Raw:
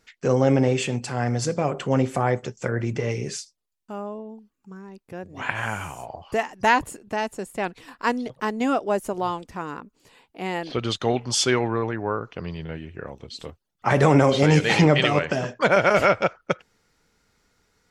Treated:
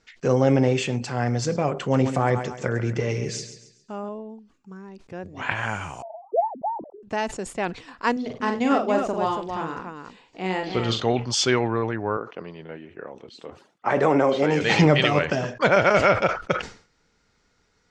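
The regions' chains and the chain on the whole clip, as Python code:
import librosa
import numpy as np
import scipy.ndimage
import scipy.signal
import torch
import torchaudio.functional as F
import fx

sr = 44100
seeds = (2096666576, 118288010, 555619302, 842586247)

y = fx.chain(x, sr, fx.high_shelf(hz=8600.0, db=5.0),
    fx.echo_feedback(ms=137, feedback_pct=37, wet_db=-11.0), at=(1.8, 4.09))
y = fx.chain(y, sr, fx.sine_speech(),
    fx.steep_lowpass(hz=750.0, slope=36), at=(6.02, 7.03))
y = fx.chain(y, sr, fx.peak_eq(hz=10000.0, db=-12.5, octaves=0.22),
    fx.echo_multitap(ms=(43, 96, 281), db=(-5.0, -17.0, -6.0)), at=(8.12, 11.02))
y = fx.chain(y, sr, fx.highpass(hz=280.0, slope=12),
    fx.peak_eq(hz=5300.0, db=-10.0, octaves=2.2), at=(12.17, 14.61))
y = scipy.signal.sosfilt(scipy.signal.butter(4, 7200.0, 'lowpass', fs=sr, output='sos'), y)
y = fx.sustainer(y, sr, db_per_s=130.0)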